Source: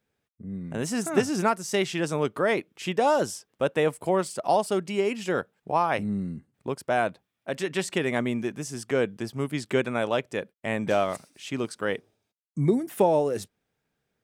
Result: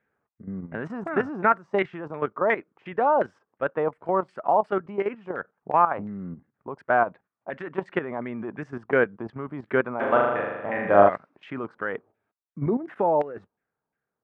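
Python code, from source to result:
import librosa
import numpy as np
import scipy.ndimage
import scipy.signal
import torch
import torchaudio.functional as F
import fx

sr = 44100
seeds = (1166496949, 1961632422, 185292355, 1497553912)

y = fx.bass_treble(x, sr, bass_db=-1, treble_db=-6)
y = fx.level_steps(y, sr, step_db=12)
y = fx.filter_lfo_lowpass(y, sr, shape='saw_down', hz=2.8, low_hz=890.0, high_hz=1900.0, q=2.6)
y = fx.rider(y, sr, range_db=5, speed_s=2.0)
y = fx.low_shelf(y, sr, hz=97.0, db=-7.5)
y = fx.room_flutter(y, sr, wall_m=6.8, rt60_s=1.2, at=(9.99, 11.08), fade=0.02)
y = F.gain(torch.from_numpy(y), 1.5).numpy()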